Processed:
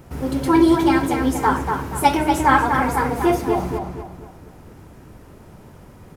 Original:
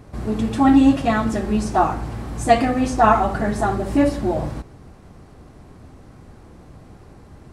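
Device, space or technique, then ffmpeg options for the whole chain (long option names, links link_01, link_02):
nightcore: -filter_complex "[0:a]highshelf=frequency=8600:gain=11,asplit=2[link_01][link_02];[link_02]adelay=292,lowpass=frequency=2900:poles=1,volume=-5dB,asplit=2[link_03][link_04];[link_04]adelay=292,lowpass=frequency=2900:poles=1,volume=0.39,asplit=2[link_05][link_06];[link_06]adelay=292,lowpass=frequency=2900:poles=1,volume=0.39,asplit=2[link_07][link_08];[link_08]adelay=292,lowpass=frequency=2900:poles=1,volume=0.39,asplit=2[link_09][link_10];[link_10]adelay=292,lowpass=frequency=2900:poles=1,volume=0.39[link_11];[link_01][link_03][link_05][link_07][link_09][link_11]amix=inputs=6:normalize=0,asetrate=53802,aresample=44100,volume=-1dB"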